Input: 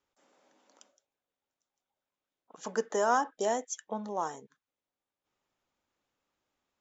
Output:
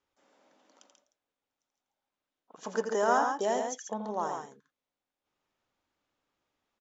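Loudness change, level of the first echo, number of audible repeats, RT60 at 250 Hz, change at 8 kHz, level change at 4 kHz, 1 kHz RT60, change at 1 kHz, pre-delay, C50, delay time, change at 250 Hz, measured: +1.0 dB, -7.5 dB, 2, no reverb, no reading, +0.5 dB, no reverb, +1.5 dB, no reverb, no reverb, 84 ms, +1.5 dB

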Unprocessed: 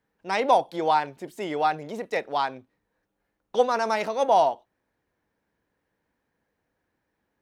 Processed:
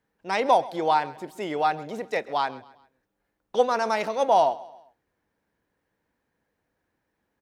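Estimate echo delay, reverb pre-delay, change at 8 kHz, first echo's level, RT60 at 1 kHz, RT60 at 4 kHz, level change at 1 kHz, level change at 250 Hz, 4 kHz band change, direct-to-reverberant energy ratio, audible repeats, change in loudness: 133 ms, no reverb, 0.0 dB, -20.0 dB, no reverb, no reverb, 0.0 dB, 0.0 dB, 0.0 dB, no reverb, 3, 0.0 dB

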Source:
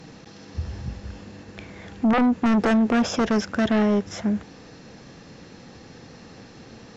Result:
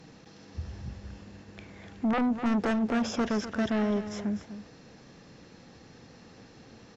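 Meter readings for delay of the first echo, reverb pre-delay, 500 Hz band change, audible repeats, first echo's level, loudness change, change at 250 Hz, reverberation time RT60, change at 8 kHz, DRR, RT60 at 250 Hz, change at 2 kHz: 250 ms, no reverb, -7.0 dB, 1, -11.5 dB, -7.5 dB, -7.5 dB, no reverb, no reading, no reverb, no reverb, -7.0 dB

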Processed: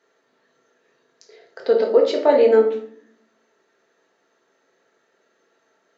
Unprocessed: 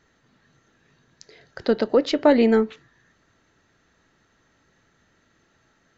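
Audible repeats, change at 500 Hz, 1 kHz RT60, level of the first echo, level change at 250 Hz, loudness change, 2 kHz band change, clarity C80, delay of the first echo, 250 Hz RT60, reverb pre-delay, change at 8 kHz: no echo, +5.5 dB, 0.60 s, no echo, -7.5 dB, +3.0 dB, -1.5 dB, 12.0 dB, no echo, 1.1 s, 4 ms, no reading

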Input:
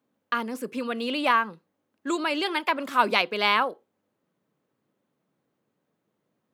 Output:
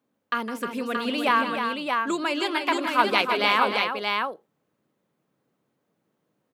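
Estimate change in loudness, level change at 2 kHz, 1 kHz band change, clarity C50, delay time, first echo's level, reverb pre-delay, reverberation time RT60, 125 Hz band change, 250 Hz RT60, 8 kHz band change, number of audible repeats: +1.0 dB, +2.0 dB, +2.0 dB, no reverb, 159 ms, -12.0 dB, no reverb, no reverb, no reading, no reverb, +2.0 dB, 3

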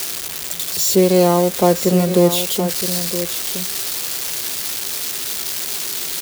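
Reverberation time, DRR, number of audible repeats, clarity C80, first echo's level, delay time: no reverb, no reverb, 1, no reverb, -10.0 dB, 968 ms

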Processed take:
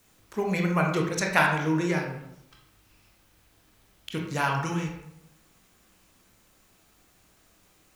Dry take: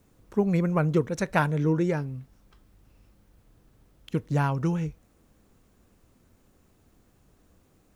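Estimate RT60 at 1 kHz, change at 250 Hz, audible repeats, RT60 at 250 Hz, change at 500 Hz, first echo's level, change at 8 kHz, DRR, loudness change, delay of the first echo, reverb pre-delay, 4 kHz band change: 0.75 s, -2.0 dB, no echo, 0.85 s, -1.5 dB, no echo, no reading, 0.0 dB, 0.0 dB, no echo, 19 ms, +9.5 dB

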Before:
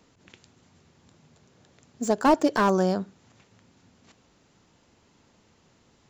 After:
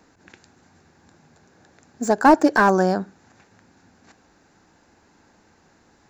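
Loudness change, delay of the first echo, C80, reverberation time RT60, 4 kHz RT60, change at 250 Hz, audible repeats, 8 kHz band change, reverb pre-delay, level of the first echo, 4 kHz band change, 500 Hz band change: +5.5 dB, no echo, no reverb, no reverb, no reverb, +5.0 dB, no echo, +3.0 dB, no reverb, no echo, +1.0 dB, +4.5 dB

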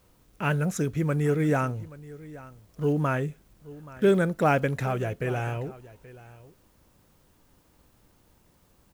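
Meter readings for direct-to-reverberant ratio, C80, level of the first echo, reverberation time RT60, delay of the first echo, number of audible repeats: no reverb, no reverb, -19.0 dB, no reverb, 828 ms, 1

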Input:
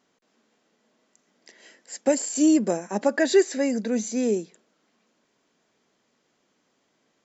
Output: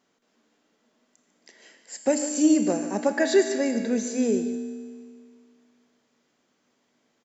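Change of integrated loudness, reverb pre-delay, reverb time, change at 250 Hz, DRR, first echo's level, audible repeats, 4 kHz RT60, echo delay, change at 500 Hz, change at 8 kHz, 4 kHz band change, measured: -1.0 dB, 23 ms, 2.0 s, 0.0 dB, 6.0 dB, -12.5 dB, 1, 1.9 s, 148 ms, -1.0 dB, no reading, -0.5 dB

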